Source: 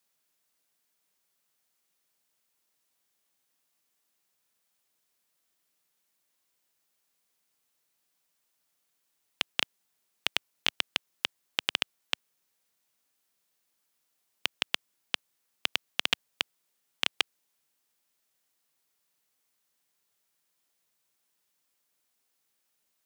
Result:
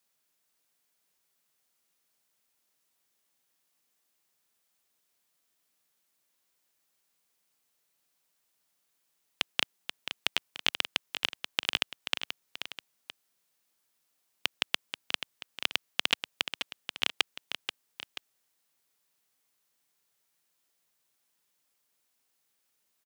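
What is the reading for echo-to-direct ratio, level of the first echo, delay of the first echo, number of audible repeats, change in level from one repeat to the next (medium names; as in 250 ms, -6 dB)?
-8.0 dB, -9.0 dB, 483 ms, 2, -6.0 dB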